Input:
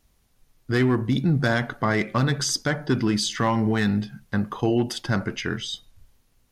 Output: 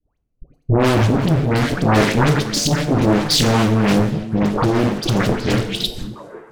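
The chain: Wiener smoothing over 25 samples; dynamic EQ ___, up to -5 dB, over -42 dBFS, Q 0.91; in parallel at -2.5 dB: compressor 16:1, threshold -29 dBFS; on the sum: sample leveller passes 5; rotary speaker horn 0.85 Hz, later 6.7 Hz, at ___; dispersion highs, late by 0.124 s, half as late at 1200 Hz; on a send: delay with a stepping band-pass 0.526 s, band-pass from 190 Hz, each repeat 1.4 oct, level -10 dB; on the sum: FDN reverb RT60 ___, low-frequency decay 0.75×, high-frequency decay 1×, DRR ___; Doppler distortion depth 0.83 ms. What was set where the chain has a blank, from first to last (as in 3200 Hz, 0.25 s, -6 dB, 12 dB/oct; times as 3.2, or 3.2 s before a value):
8400 Hz, 3.06, 0.69 s, 6.5 dB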